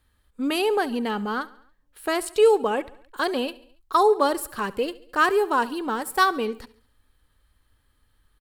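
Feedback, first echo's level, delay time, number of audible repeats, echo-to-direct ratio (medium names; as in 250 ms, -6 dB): 55%, -20.0 dB, 70 ms, 3, -18.5 dB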